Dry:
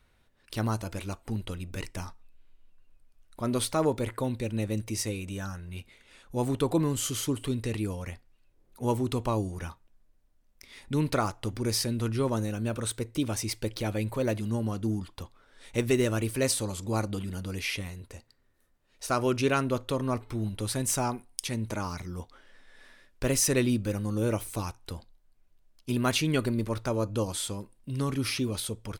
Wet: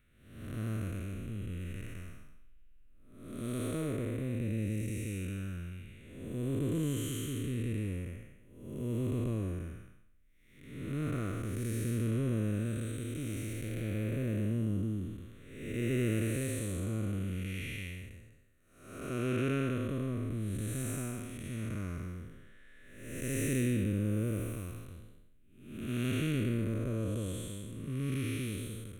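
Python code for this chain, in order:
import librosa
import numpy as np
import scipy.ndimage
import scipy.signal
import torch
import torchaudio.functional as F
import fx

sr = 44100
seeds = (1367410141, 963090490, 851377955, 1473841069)

y = fx.spec_blur(x, sr, span_ms=404.0)
y = fx.fixed_phaser(y, sr, hz=2100.0, stages=4)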